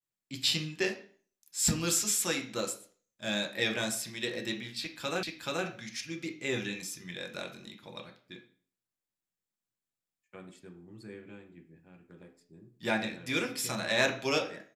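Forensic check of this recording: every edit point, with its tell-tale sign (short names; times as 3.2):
5.23 repeat of the last 0.43 s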